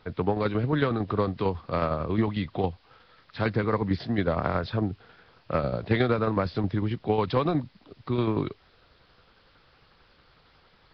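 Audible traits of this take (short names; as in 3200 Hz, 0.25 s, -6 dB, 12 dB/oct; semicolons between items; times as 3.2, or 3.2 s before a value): tremolo saw down 11 Hz, depth 55%; a quantiser's noise floor 10-bit, dither triangular; Nellymoser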